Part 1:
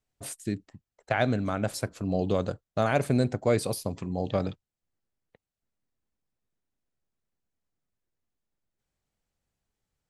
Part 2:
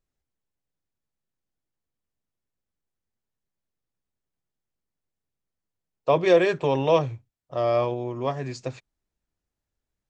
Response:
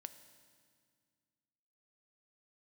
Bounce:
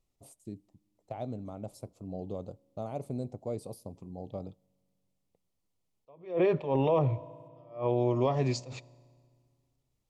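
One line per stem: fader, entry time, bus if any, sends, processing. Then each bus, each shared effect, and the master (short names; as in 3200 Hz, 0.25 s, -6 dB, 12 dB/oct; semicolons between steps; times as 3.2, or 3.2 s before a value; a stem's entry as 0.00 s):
-12.5 dB, 0.00 s, send -13.5 dB, EQ curve 830 Hz 0 dB, 1800 Hz -13 dB, 9800 Hz -5 dB
+2.0 dB, 0.00 s, send -6 dB, treble ducked by the level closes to 1800 Hz, closed at -18.5 dBFS; attack slew limiter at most 160 dB/s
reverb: on, RT60 1.9 s, pre-delay 3 ms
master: bell 1600 Hz -15 dB 0.37 oct; limiter -17.5 dBFS, peak gain reduction 12 dB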